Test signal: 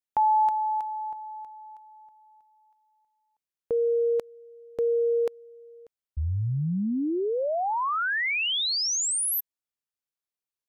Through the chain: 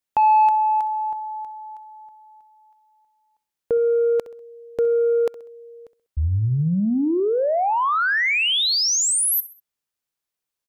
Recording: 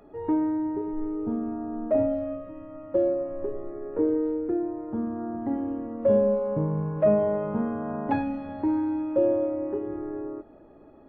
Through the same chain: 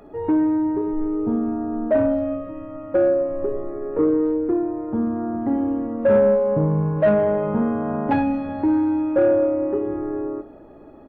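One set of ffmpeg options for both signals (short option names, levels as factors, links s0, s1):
-af "asoftclip=type=tanh:threshold=0.133,aecho=1:1:65|130|195:0.141|0.0565|0.0226,volume=2.24"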